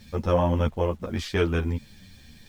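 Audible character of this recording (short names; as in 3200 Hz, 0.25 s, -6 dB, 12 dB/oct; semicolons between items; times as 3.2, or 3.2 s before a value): a quantiser's noise floor 10-bit, dither none; a shimmering, thickened sound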